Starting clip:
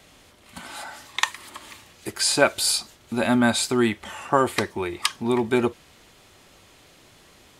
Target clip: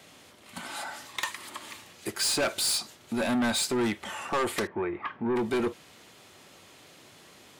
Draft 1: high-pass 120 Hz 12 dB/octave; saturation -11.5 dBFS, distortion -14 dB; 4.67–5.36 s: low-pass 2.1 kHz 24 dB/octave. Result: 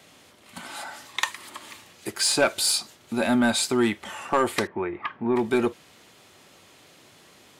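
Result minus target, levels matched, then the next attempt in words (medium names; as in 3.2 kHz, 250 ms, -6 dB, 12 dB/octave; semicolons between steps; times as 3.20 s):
saturation: distortion -8 dB
high-pass 120 Hz 12 dB/octave; saturation -23 dBFS, distortion -6 dB; 4.67–5.36 s: low-pass 2.1 kHz 24 dB/octave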